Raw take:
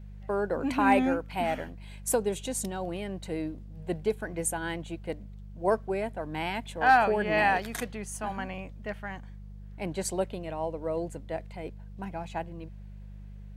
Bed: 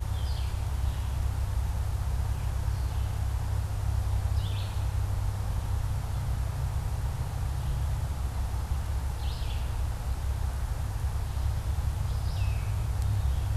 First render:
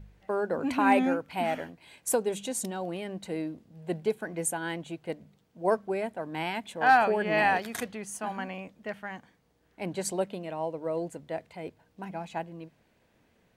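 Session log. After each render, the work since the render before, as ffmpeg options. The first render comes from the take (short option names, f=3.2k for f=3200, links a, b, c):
-af "bandreject=f=50:t=h:w=4,bandreject=f=100:t=h:w=4,bandreject=f=150:t=h:w=4,bandreject=f=200:t=h:w=4"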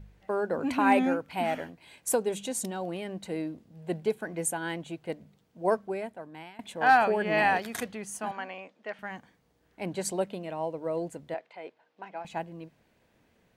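-filter_complex "[0:a]asettb=1/sr,asplit=3[a][b][c];[a]atrim=end=8.314[d];[b]atrim=start=8.31:end=8.99,asetpts=PTS-STARTPTS,afade=t=in:d=0.004:c=qsin,afade=t=out:st=0.676:d=0.004:c=qsin,highpass=380,lowpass=5.3k[e];[c]atrim=start=8.986[f];[d][e]acrossfade=d=0.004:c1=hsin:c2=qsin[g];[g][f]acrossfade=d=0.004:c1=qsin:c2=hsin,asettb=1/sr,asplit=3[h][i][j];[h]atrim=end=11.344[k];[i]atrim=start=11.34:end=12.25,asetpts=PTS-STARTPTS,afade=t=in:d=0.004:c=qsin,afade=t=out:st=0.906:d=0.004:c=qsin,highpass=470,lowpass=3.9k[l];[j]atrim=start=12.246[m];[k][l]acrossfade=d=0.004:c1=hsin:c2=qsin[n];[n][m]acrossfade=d=0.004:c1=qsin:c2=hsin,asplit=2[o][p];[o]atrim=end=6.59,asetpts=PTS-STARTPTS,afade=t=out:st=5.68:d=0.91:silence=0.0749894[q];[p]atrim=start=6.59,asetpts=PTS-STARTPTS,afade=t=in:d=0.004:c=hsin:silence=0.0749894[r];[q][r]concat=n=2:v=0:a=1"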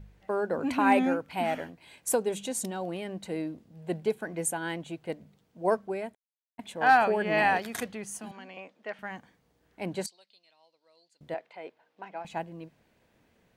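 -filter_complex "[0:a]asettb=1/sr,asplit=3[a][b][c];[a]atrim=end=8.044[d];[b]atrim=start=8.04:end=8.57,asetpts=PTS-STARTPTS,afade=t=in:d=0.004:c=qsin,afade=t=out:st=0.526:d=0.004:c=qsin,acrossover=split=360|3000[e][f][g];[f]acompressor=threshold=-47dB:ratio=6:attack=3.2:release=140:knee=2.83:detection=peak[h];[e][h][g]amix=inputs=3:normalize=0[i];[c]atrim=start=8.566[j];[d][i]acrossfade=d=0.004:c1=hsin:c2=qsin[k];[k][j]acrossfade=d=0.004:c1=qsin:c2=hsin,asettb=1/sr,asplit=3[l][m][n];[l]atrim=end=10.064[o];[m]atrim=start=10.06:end=11.21,asetpts=PTS-STARTPTS,afade=t=in:d=0.004:c=qsin,afade=t=out:st=1.146:d=0.004:c=qsin,bandpass=f=4.4k:t=q:w=6.2[p];[n]atrim=start=11.206[q];[o][p]acrossfade=d=0.004:c1=hsin:c2=qsin[r];[r][q]acrossfade=d=0.004:c1=qsin:c2=hsin,asplit=3[s][t][u];[s]atrim=end=6.15,asetpts=PTS-STARTPTS,afade=t=out:st=6.146:d=0.004:c=hsin[v];[t]atrim=start=6.15:end=6.58,asetpts=PTS-STARTPTS,volume=0[w];[u]atrim=start=6.58,asetpts=PTS-STARTPTS,afade=t=in:d=0.004:c=hsin[x];[v][w][x]concat=n=3:v=0:a=1"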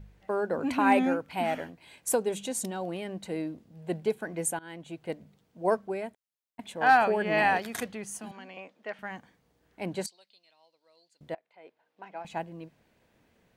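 -filter_complex "[0:a]asplit=3[a][b][c];[a]atrim=end=4.59,asetpts=PTS-STARTPTS,afade=t=out:st=4.586:d=0.004:c=hsin:silence=0.112202[d];[b]atrim=start=4.59:end=11.35,asetpts=PTS-STARTPTS,afade=t=in:d=0.46:silence=0.112202,afade=t=out:st=6.756:d=0.004:c=hsin:silence=0.0630957[e];[c]atrim=start=11.35,asetpts=PTS-STARTPTS,afade=t=in:d=0.97:silence=0.0630957[f];[d][e][f]concat=n=3:v=0:a=1"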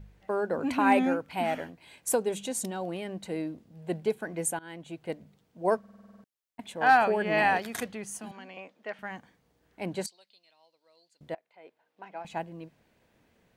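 -filter_complex "[0:a]asplit=10[a][b][c][d][e][f][g][h][i][j];[a]atrim=end=5.842[k];[b]atrim=start=5.788:end=5.842[l];[c]atrim=start=5.788:end=5.842[m];[d]atrim=start=5.788:end=5.842[n];[e]atrim=start=5.788:end=5.842[o];[f]atrim=start=5.788:end=5.842[p];[g]atrim=start=5.788:end=5.842[q];[h]atrim=start=5.788:end=5.842[r];[i]atrim=start=5.788:end=5.842[s];[j]atrim=start=6.238[t];[k][l]acrossfade=d=0.004:c1=hsin:c2=hsin[u];[u][m]acrossfade=d=0.004:c1=hsin:c2=hsin[v];[v][n]acrossfade=d=0.004:c1=hsin:c2=hsin[w];[w][o]acrossfade=d=0.004:c1=hsin:c2=hsin[x];[x][p]acrossfade=d=0.004:c1=hsin:c2=hsin[y];[y][q]acrossfade=d=0.004:c1=hsin:c2=hsin[z];[z][r]acrossfade=d=0.004:c1=hsin:c2=hsin[aa];[aa][s]acrossfade=d=0.004:c1=hsin:c2=hsin[ab];[ab][t]acrossfade=d=0.004:c1=hsin:c2=hsin"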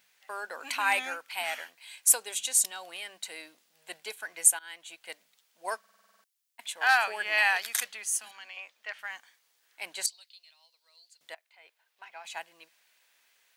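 -af "highpass=1.2k,highshelf=f=2.5k:g=11.5"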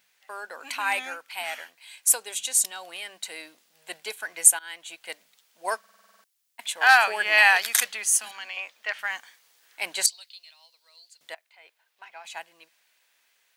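-af "dynaudnorm=f=350:g=17:m=11.5dB"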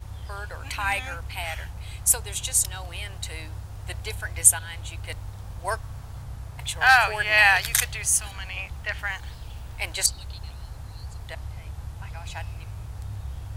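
-filter_complex "[1:a]volume=-7dB[a];[0:a][a]amix=inputs=2:normalize=0"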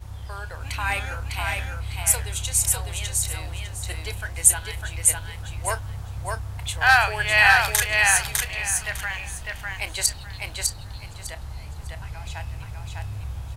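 -filter_complex "[0:a]asplit=2[a][b];[b]adelay=31,volume=-14dB[c];[a][c]amix=inputs=2:normalize=0,aecho=1:1:603|1206|1809:0.708|0.163|0.0375"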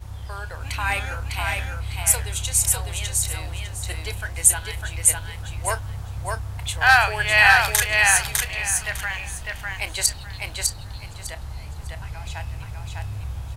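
-af "volume=1.5dB,alimiter=limit=-2dB:level=0:latency=1"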